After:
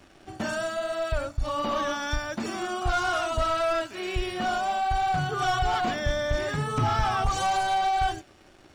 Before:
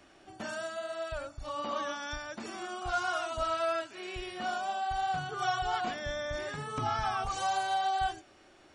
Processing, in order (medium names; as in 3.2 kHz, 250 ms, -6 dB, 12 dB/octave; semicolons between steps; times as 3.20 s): waveshaping leveller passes 2; bass shelf 220 Hz +9 dB